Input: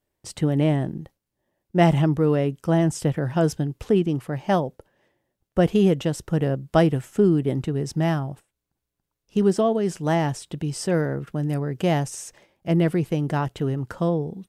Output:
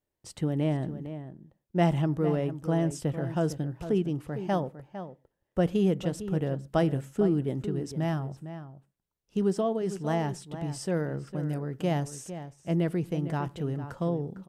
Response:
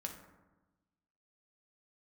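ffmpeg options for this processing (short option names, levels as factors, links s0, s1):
-filter_complex "[0:a]asplit=2[s0][s1];[s1]adelay=454.8,volume=0.282,highshelf=f=4000:g=-10.2[s2];[s0][s2]amix=inputs=2:normalize=0,asplit=2[s3][s4];[1:a]atrim=start_sample=2205,atrim=end_sample=6174,lowpass=f=2400:w=0.5412,lowpass=f=2400:w=1.3066[s5];[s4][s5]afir=irnorm=-1:irlink=0,volume=0.2[s6];[s3][s6]amix=inputs=2:normalize=0,volume=0.398"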